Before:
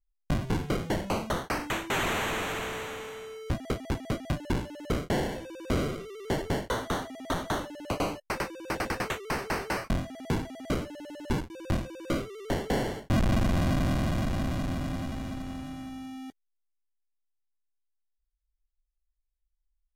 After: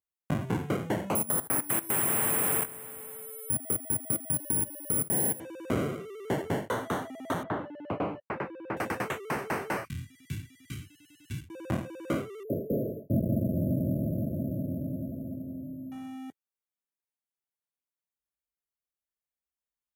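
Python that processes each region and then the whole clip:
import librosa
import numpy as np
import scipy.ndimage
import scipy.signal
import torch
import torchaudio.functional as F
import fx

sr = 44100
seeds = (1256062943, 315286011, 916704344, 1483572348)

y = fx.chain(x, sr, fx.low_shelf(hz=350.0, db=6.0),
    fx.level_steps(step_db=16),
    fx.resample_bad(factor=4, down='filtered', up='zero_stuff'), at=(1.15, 5.4))
y = fx.chain(y, sr, fx.air_absorb(metres=420.0),
    fx.doppler_dist(depth_ms=0.18), at=(7.43, 8.77))
y = fx.chain(y, sr, fx.cheby1_bandstop(low_hz=130.0, high_hz=3100.0, order=2),
    fx.comb(ms=2.6, depth=0.48), at=(9.85, 11.49))
y = fx.chain(y, sr, fx.brickwall_bandstop(low_hz=670.0, high_hz=11000.0),
    fx.high_shelf(hz=11000.0, db=4.5), at=(12.43, 15.92))
y = scipy.signal.sosfilt(scipy.signal.butter(4, 98.0, 'highpass', fs=sr, output='sos'), y)
y = fx.peak_eq(y, sr, hz=4600.0, db=-11.5, octaves=0.97)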